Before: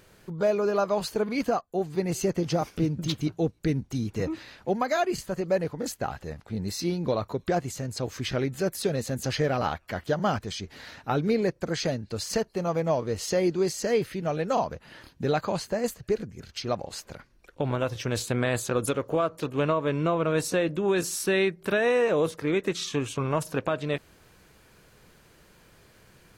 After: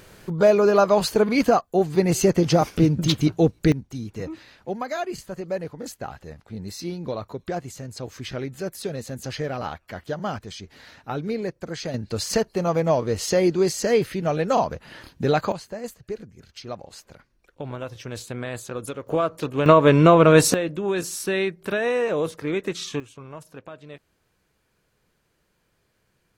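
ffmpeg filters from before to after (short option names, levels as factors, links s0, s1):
-af "asetnsamples=n=441:p=0,asendcmd='3.72 volume volume -3dB;11.94 volume volume 5dB;15.52 volume volume -5.5dB;19.07 volume volume 3dB;19.66 volume volume 12dB;20.54 volume volume 0dB;23 volume volume -13dB',volume=2.51"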